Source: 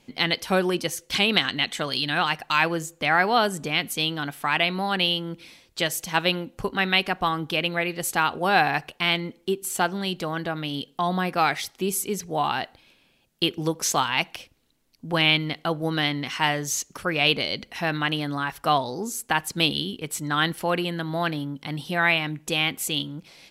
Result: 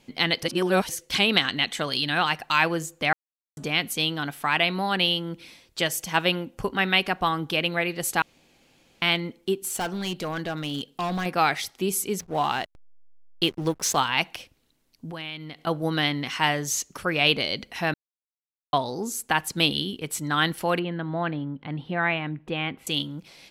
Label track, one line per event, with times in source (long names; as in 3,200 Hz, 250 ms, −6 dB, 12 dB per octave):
0.430000	0.890000	reverse
3.130000	3.570000	silence
5.790000	7.040000	notch filter 4,000 Hz
8.220000	9.020000	fill with room tone
9.580000	11.260000	gain into a clipping stage and back gain 24.5 dB
12.190000	13.970000	slack as between gear wheels play −33.5 dBFS
15.100000	15.670000	downward compressor 2.5 to 1, threshold −39 dBFS
17.940000	18.730000	silence
20.790000	22.870000	high-frequency loss of the air 470 metres